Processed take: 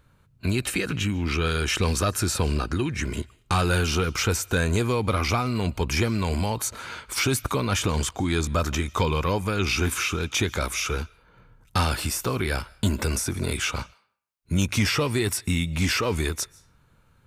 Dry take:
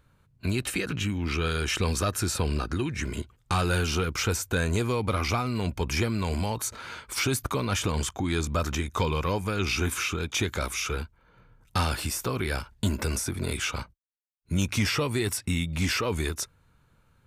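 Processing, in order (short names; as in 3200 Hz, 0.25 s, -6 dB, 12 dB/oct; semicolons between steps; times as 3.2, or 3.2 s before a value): on a send: HPF 1400 Hz 6 dB/oct + reverb RT60 0.55 s, pre-delay 0.105 s, DRR 24.5 dB; on the sum: gain +3 dB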